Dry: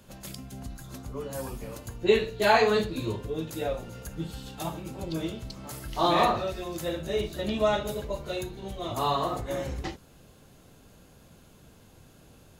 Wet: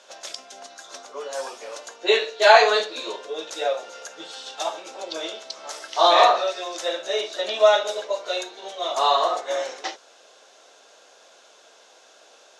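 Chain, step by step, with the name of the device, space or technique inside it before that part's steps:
phone speaker on a table (loudspeaker in its box 480–7,900 Hz, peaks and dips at 660 Hz +4 dB, 1,500 Hz +3 dB, 3,600 Hz +5 dB, 5,700 Hz +8 dB)
level +6.5 dB

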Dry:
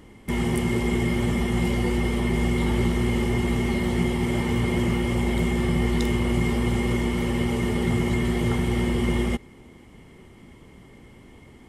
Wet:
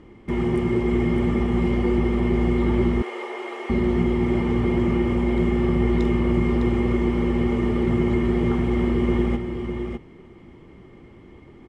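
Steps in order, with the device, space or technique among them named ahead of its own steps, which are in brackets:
single-tap delay 606 ms −7 dB
dynamic equaliser 4,200 Hz, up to −3 dB, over −44 dBFS, Q 0.81
low-pass filter 6,100 Hz 12 dB per octave
inside a helmet (high-shelf EQ 3,300 Hz −10 dB; hollow resonant body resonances 350/1,200/2,400 Hz, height 7 dB)
0:03.02–0:03.70: inverse Chebyshev high-pass filter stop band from 180 Hz, stop band 50 dB

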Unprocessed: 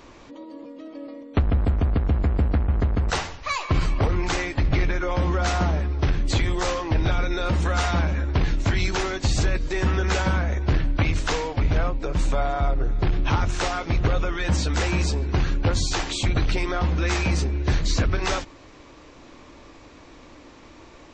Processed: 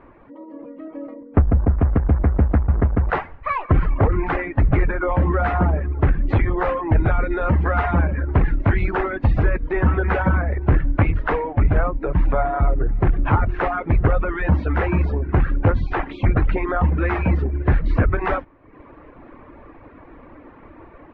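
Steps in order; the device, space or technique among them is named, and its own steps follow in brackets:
0:01.14–0:01.78: low-pass filter 1,600 Hz 6 dB per octave
reverb reduction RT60 0.76 s
action camera in a waterproof case (low-pass filter 1,900 Hz 24 dB per octave; automatic gain control gain up to 6 dB; AAC 96 kbit/s 32,000 Hz)

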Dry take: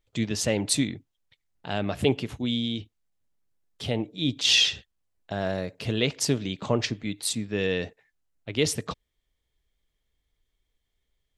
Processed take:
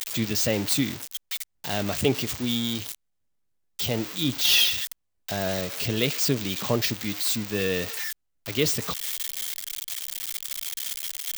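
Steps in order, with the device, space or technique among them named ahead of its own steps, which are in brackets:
budget class-D amplifier (gap after every zero crossing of 0.052 ms; spike at every zero crossing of −16.5 dBFS)

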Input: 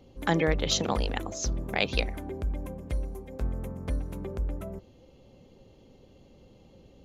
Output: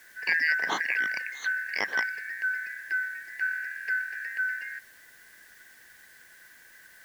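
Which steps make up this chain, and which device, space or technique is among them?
split-band scrambled radio (band-splitting scrambler in four parts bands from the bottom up 3142; band-pass filter 310–3,200 Hz; white noise bed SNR 26 dB)
0:00.56–0:01.40: high-pass filter 130 Hz 12 dB per octave

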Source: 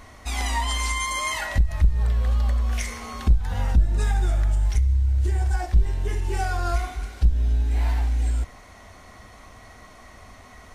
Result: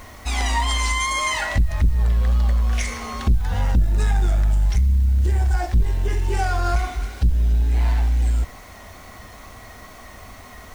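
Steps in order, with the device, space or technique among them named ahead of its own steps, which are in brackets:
compact cassette (soft clipping −16 dBFS, distortion −14 dB; low-pass filter 9,100 Hz; tape wow and flutter 27 cents; white noise bed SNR 34 dB)
level +5 dB

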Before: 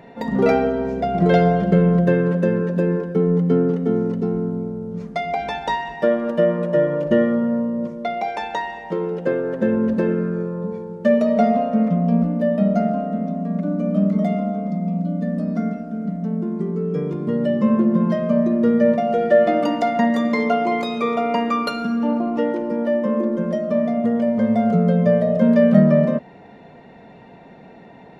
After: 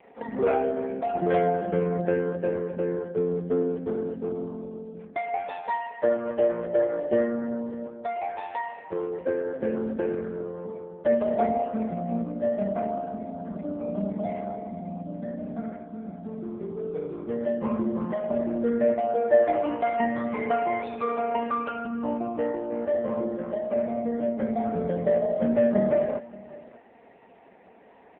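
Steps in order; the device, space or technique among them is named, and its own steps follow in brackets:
satellite phone (band-pass filter 310–3,100 Hz; single-tap delay 580 ms −20.5 dB; level −4 dB; AMR narrowband 5.15 kbit/s 8,000 Hz)

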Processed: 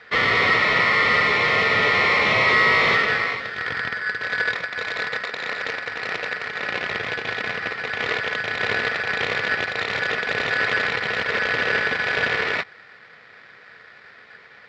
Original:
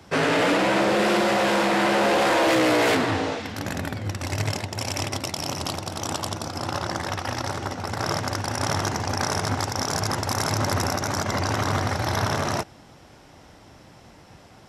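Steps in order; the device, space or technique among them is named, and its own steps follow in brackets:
ring modulator pedal into a guitar cabinet (ring modulator with a square carrier 1,600 Hz; loudspeaker in its box 96–3,900 Hz, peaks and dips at 110 Hz +5 dB, 310 Hz −5 dB, 460 Hz +9 dB, 890 Hz −7 dB, 1,900 Hz +6 dB, 2,800 Hz −3 dB)
level +1.5 dB

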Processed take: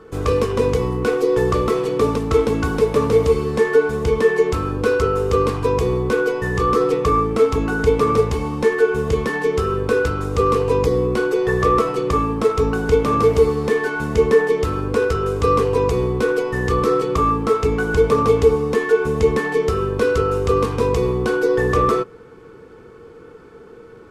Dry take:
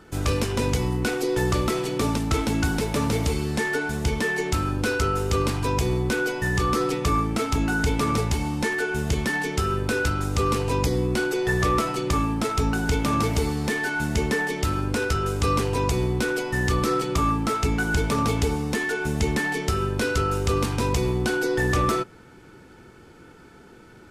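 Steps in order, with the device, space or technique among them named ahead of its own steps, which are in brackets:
inside a helmet (high-shelf EQ 3,600 Hz −8 dB; hollow resonant body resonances 460/1,100 Hz, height 17 dB, ringing for 70 ms)
level +1.5 dB

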